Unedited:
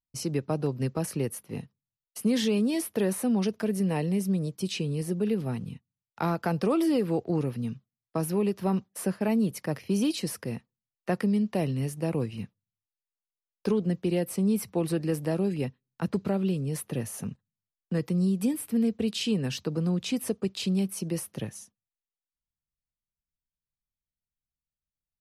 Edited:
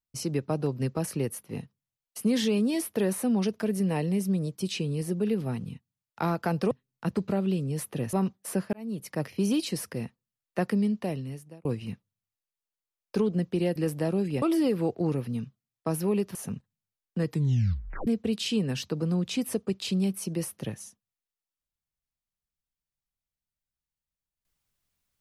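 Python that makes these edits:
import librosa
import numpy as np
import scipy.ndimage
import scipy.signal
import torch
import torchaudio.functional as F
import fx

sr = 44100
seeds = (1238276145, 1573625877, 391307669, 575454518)

y = fx.edit(x, sr, fx.swap(start_s=6.71, length_s=1.93, other_s=15.68, other_length_s=1.42),
    fx.fade_in_span(start_s=9.24, length_s=0.47),
    fx.fade_out_span(start_s=11.31, length_s=0.85),
    fx.cut(start_s=14.27, length_s=0.75),
    fx.tape_stop(start_s=18.03, length_s=0.79), tone=tone)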